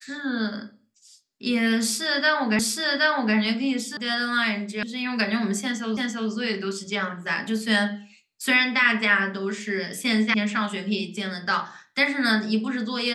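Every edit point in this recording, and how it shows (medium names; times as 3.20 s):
2.59 s: repeat of the last 0.77 s
3.97 s: sound stops dead
4.83 s: sound stops dead
5.97 s: repeat of the last 0.34 s
10.34 s: sound stops dead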